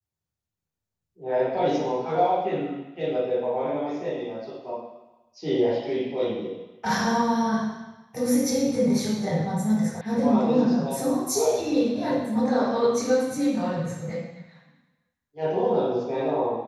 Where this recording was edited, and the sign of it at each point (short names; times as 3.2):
10.01 sound cut off